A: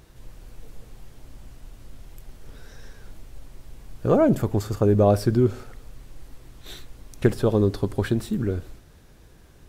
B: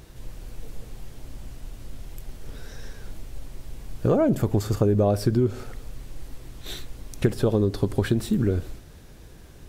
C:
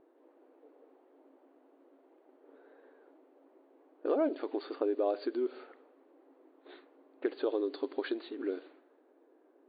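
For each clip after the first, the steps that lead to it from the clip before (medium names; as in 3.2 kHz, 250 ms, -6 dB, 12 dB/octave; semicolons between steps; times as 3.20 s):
peaking EQ 1.2 kHz -2.5 dB 1.4 oct; compression 4:1, threshold -23 dBFS, peak gain reduction 9 dB; trim +5 dB
brick-wall FIR band-pass 260–4700 Hz; level-controlled noise filter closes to 740 Hz, open at -21.5 dBFS; trim -8 dB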